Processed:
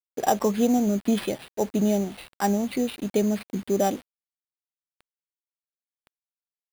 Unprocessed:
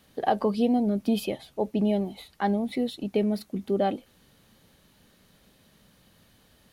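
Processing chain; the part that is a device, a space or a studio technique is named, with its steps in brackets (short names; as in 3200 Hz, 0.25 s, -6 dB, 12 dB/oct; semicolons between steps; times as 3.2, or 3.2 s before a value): early 8-bit sampler (sample-rate reducer 6600 Hz, jitter 0%; bit-crush 8-bit); gain +2 dB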